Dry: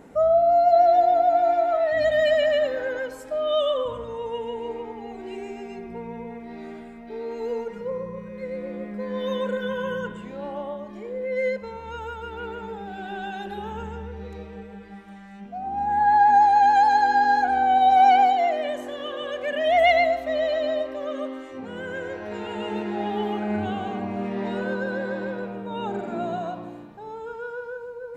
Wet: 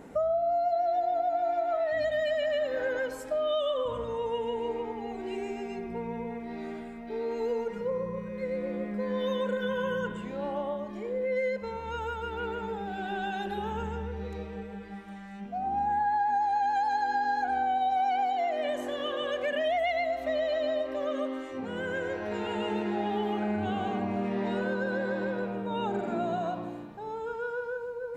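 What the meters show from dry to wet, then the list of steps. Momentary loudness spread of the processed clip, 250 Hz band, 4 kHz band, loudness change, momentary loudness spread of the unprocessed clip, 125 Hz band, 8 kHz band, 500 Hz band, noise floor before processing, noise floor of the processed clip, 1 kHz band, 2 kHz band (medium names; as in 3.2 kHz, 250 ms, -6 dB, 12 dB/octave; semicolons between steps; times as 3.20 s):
9 LU, -2.0 dB, -5.5 dB, -8.0 dB, 19 LU, -1.5 dB, no reading, -5.5 dB, -41 dBFS, -41 dBFS, -9.0 dB, -6.0 dB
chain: compression, threshold -26 dBFS, peak gain reduction 12.5 dB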